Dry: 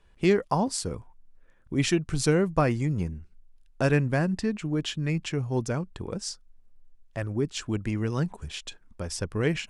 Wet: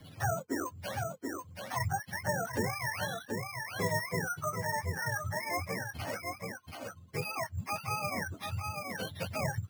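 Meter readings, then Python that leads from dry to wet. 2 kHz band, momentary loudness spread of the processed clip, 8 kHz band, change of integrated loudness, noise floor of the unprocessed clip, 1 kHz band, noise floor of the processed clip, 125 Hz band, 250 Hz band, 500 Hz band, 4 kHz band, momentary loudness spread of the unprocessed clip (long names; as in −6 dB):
0.0 dB, 7 LU, −5.0 dB, −8.0 dB, −57 dBFS, −0.5 dB, −55 dBFS, −9.5 dB, −13.5 dB, −9.0 dB, −7.0 dB, 14 LU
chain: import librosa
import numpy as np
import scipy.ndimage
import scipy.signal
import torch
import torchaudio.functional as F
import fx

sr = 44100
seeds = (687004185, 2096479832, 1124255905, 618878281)

p1 = fx.octave_mirror(x, sr, pivot_hz=520.0)
p2 = scipy.signal.sosfilt(scipy.signal.butter(4, 6200.0, 'lowpass', fs=sr, output='sos'), p1)
p3 = p2 + fx.echo_single(p2, sr, ms=731, db=-9.0, dry=0)
p4 = np.repeat(p3[::6], 6)[:len(p3)]
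p5 = fx.band_squash(p4, sr, depth_pct=70)
y = p5 * 10.0 ** (-5.5 / 20.0)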